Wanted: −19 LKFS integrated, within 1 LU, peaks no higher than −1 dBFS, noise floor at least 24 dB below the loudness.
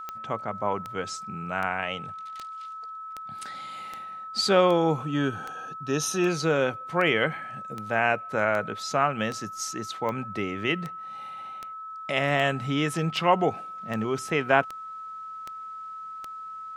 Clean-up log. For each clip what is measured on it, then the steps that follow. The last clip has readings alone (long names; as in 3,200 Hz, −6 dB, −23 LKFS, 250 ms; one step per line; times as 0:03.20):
number of clicks 22; interfering tone 1,300 Hz; level of the tone −36 dBFS; integrated loudness −27.0 LKFS; sample peak −4.5 dBFS; target loudness −19.0 LKFS
→ click removal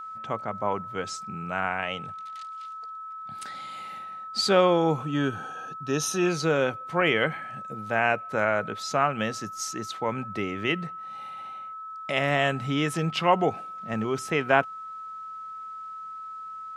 number of clicks 0; interfering tone 1,300 Hz; level of the tone −36 dBFS
→ notch filter 1,300 Hz, Q 30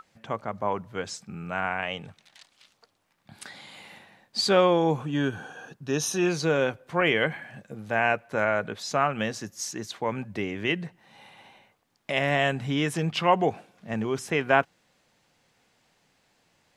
interfering tone none found; integrated loudness −27.0 LKFS; sample peak −5.0 dBFS; target loudness −19.0 LKFS
→ level +8 dB
brickwall limiter −1 dBFS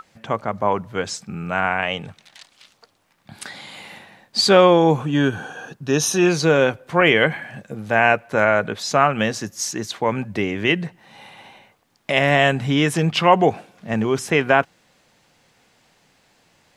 integrated loudness −19.0 LKFS; sample peak −1.0 dBFS; background noise floor −62 dBFS